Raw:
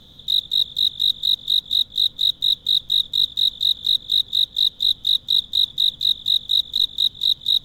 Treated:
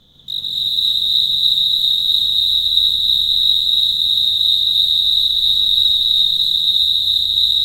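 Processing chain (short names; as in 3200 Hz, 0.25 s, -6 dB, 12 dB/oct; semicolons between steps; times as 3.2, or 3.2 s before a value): regenerating reverse delay 0.139 s, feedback 71%, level -1.5 dB; non-linear reverb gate 0.42 s rising, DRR -6 dB; gain -5 dB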